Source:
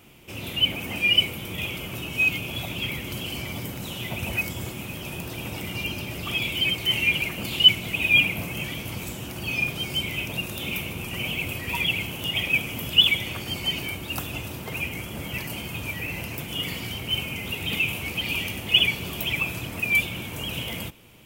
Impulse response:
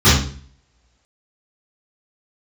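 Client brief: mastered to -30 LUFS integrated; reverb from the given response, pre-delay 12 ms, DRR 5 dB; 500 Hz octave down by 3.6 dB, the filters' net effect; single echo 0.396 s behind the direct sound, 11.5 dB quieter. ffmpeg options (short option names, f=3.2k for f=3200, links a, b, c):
-filter_complex "[0:a]equalizer=f=500:t=o:g=-5,aecho=1:1:396:0.266,asplit=2[a][b];[1:a]atrim=start_sample=2205,adelay=12[c];[b][c]afir=irnorm=-1:irlink=0,volume=-31dB[d];[a][d]amix=inputs=2:normalize=0,volume=-7.5dB"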